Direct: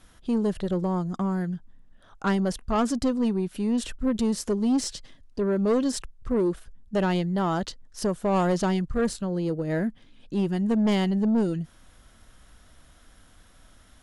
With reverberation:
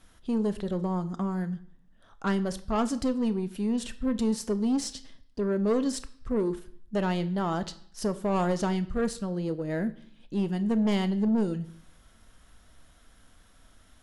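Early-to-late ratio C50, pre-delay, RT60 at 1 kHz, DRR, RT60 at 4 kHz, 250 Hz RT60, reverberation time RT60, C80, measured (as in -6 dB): 16.5 dB, 4 ms, 0.60 s, 11.0 dB, 0.60 s, 0.65 s, 0.60 s, 19.5 dB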